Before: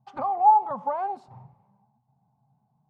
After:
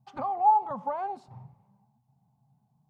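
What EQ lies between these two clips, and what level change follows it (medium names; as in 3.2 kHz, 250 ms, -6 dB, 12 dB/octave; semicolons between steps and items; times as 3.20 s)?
peaking EQ 840 Hz -6 dB 2.8 oct; +2.0 dB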